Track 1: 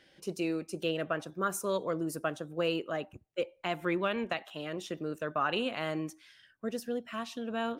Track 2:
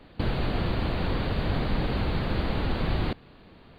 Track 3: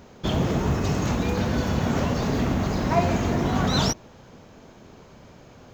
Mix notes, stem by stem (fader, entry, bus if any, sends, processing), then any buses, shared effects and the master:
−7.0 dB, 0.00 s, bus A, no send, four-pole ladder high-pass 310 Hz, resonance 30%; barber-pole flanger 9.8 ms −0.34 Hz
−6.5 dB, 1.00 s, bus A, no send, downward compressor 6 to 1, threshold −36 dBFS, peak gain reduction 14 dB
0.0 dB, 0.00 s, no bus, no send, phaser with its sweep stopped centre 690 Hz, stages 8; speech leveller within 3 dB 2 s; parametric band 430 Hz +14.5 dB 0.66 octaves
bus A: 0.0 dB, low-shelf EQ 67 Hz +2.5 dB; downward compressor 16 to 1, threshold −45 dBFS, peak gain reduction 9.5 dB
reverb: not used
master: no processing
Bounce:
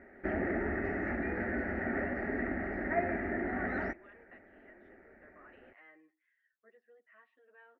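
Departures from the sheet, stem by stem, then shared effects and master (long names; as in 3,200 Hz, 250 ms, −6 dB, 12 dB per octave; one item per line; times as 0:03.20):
stem 2: entry 1.00 s → 0.15 s
master: extra transistor ladder low-pass 2,000 Hz, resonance 80%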